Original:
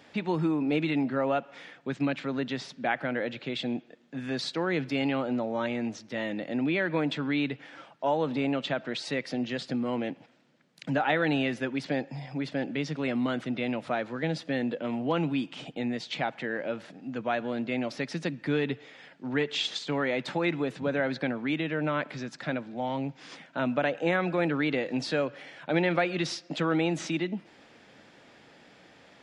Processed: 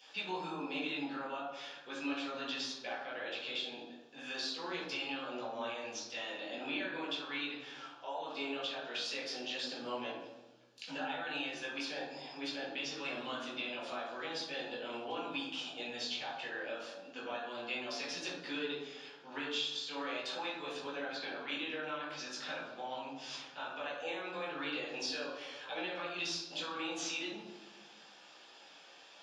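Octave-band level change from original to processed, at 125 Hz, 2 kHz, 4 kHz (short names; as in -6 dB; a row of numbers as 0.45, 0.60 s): -24.0, -7.5, -1.5 dB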